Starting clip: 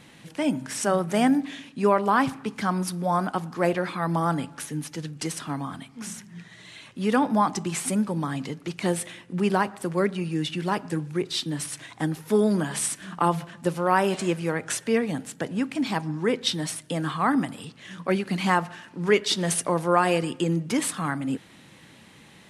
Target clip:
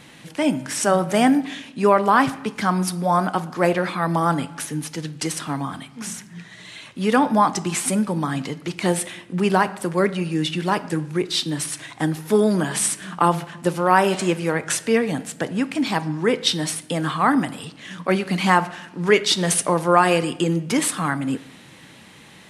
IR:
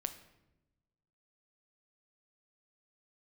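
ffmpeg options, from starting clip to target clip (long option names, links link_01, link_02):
-filter_complex "[0:a]asplit=2[link_01][link_02];[1:a]atrim=start_sample=2205,lowshelf=frequency=320:gain=-7[link_03];[link_02][link_03]afir=irnorm=-1:irlink=0,volume=0.5dB[link_04];[link_01][link_04]amix=inputs=2:normalize=0"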